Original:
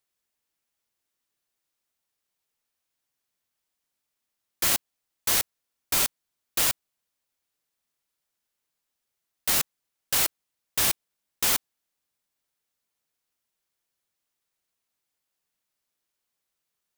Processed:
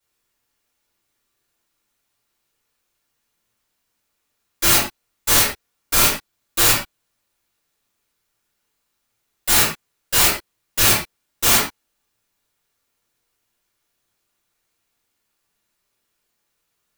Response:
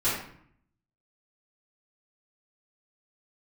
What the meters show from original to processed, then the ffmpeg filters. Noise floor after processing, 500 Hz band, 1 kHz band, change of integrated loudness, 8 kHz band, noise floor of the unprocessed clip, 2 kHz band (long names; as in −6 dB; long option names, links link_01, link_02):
−74 dBFS, +11.5 dB, +11.5 dB, +9.0 dB, +8.5 dB, −83 dBFS, +11.0 dB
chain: -filter_complex "[1:a]atrim=start_sample=2205,atrim=end_sample=6174[link_01];[0:a][link_01]afir=irnorm=-1:irlink=0"